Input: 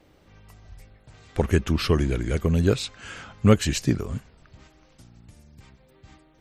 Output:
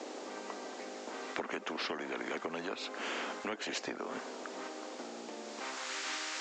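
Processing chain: added noise violet -41 dBFS; Chebyshev band-pass 240–7300 Hz, order 5; compression 6:1, threshold -35 dBFS, peak gain reduction 19 dB; band-pass sweep 430 Hz -> 1.6 kHz, 5.40–5.94 s; spectrum-flattening compressor 4:1; trim +10 dB

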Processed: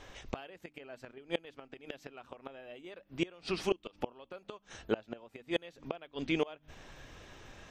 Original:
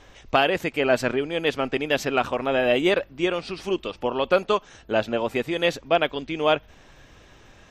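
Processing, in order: hum notches 50/100/150/200/250/300 Hz; inverted gate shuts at -16 dBFS, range -27 dB; trim -1.5 dB

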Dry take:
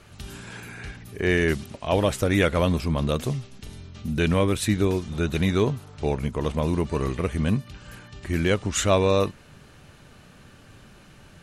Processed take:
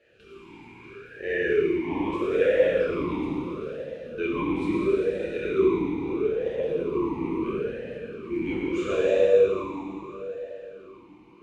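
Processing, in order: octave divider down 2 oct, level +1 dB; plate-style reverb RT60 4.1 s, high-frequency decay 0.75×, DRR -8 dB; talking filter e-u 0.76 Hz

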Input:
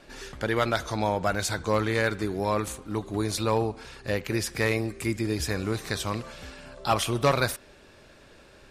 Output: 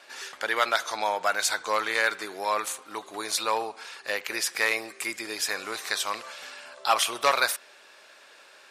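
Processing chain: high-pass 820 Hz 12 dB/octave; trim +4.5 dB

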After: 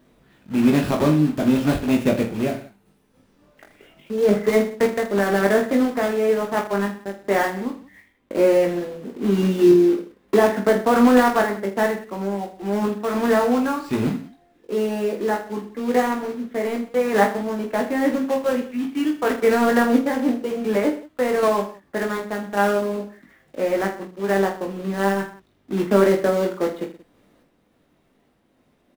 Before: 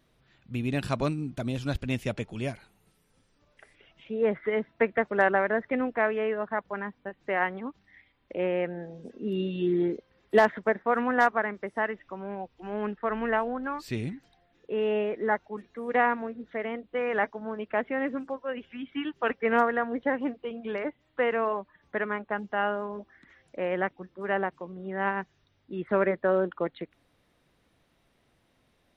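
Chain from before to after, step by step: block-companded coder 3-bit; FFT filter 120 Hz 0 dB, 220 Hz +10 dB, 5.7 kHz -4 dB; peak limiter -11 dBFS, peak gain reduction 9.5 dB; random-step tremolo; reverse bouncing-ball echo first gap 20 ms, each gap 1.3×, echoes 5; trim +4 dB

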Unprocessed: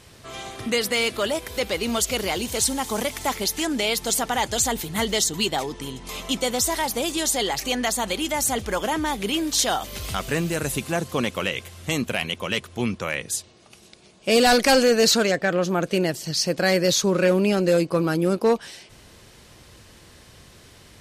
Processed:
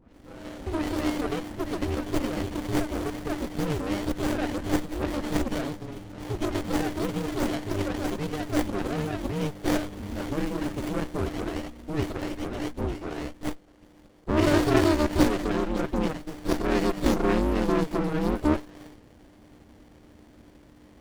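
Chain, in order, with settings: phase dispersion highs, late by 141 ms, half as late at 1.8 kHz; ring modulator 150 Hz; sliding maximum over 33 samples

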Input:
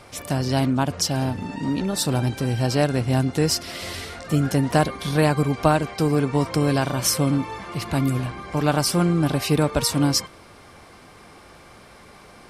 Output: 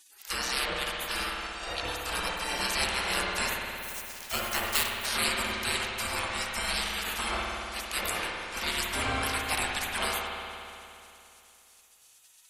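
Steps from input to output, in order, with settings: 3.78–5.06 s: sample-rate reducer 12 kHz; spectral gate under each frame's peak -25 dB weak; spring tank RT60 2.8 s, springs 57 ms, chirp 45 ms, DRR -0.5 dB; trim +5.5 dB

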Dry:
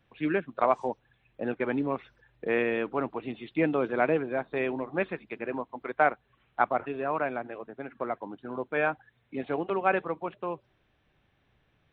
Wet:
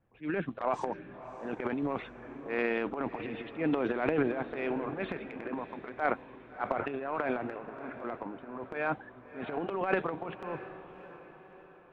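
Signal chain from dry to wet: level-controlled noise filter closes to 1.2 kHz, open at -21 dBFS; transient shaper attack -10 dB, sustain +12 dB; echo that smears into a reverb 633 ms, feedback 47%, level -13 dB; trim -4 dB

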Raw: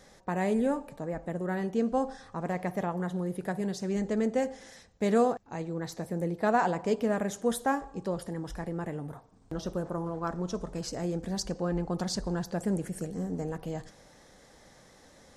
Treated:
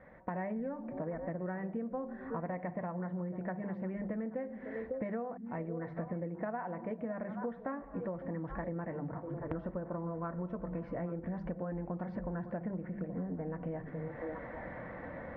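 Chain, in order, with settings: hum notches 50/100/150/200/250/300/350 Hz; comb of notches 410 Hz; repeats whose band climbs or falls 276 ms, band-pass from 160 Hz, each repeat 1.4 oct, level -10 dB; level rider gain up to 13 dB; Chebyshev low-pass 2.1 kHz, order 4; compression 20:1, threshold -37 dBFS, peak gain reduction 28 dB; trim +2 dB

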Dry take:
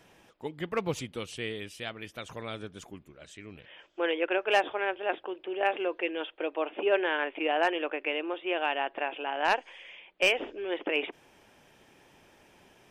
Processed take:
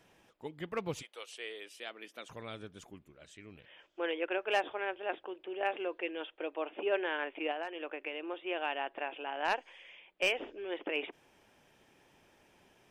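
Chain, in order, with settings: 1.01–2.28 s: high-pass 600 Hz -> 220 Hz 24 dB/octave; 7.51–8.23 s: compression 10:1, threshold -29 dBFS, peak gain reduction 9.5 dB; trim -6 dB

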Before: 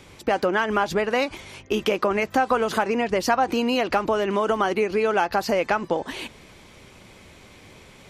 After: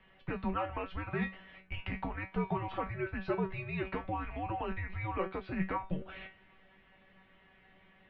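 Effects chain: mistuned SSB -340 Hz 300–3400 Hz; feedback comb 190 Hz, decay 0.24 s, harmonics all, mix 90%; trim -1.5 dB

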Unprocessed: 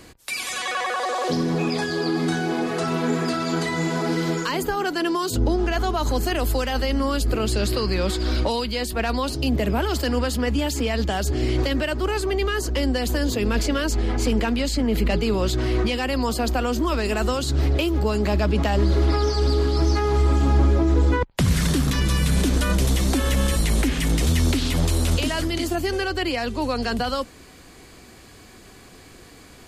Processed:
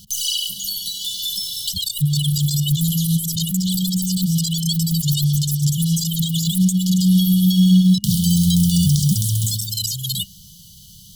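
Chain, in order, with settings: tracing distortion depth 0.022 ms; wide varispeed 2.66×; FFT band-reject 210–2900 Hz; trim +6 dB

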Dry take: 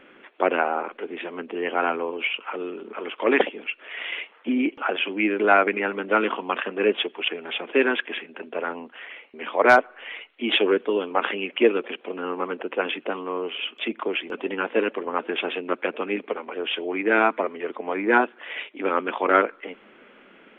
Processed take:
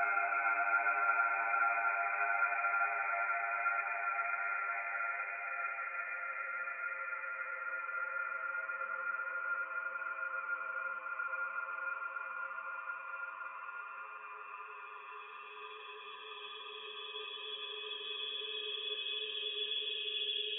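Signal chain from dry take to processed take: expander on every frequency bin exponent 3; Bessel high-pass 2.2 kHz, order 2; Paulstretch 14×, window 1.00 s, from 5.48 s; trim +3 dB

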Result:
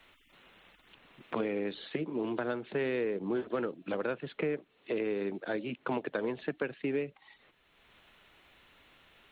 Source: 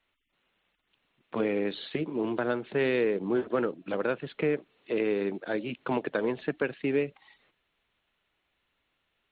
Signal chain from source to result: three bands compressed up and down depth 70%; trim -5 dB

